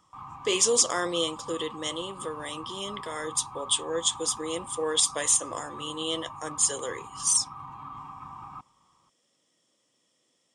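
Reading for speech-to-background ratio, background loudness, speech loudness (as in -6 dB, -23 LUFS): 15.0 dB, -42.0 LUFS, -27.0 LUFS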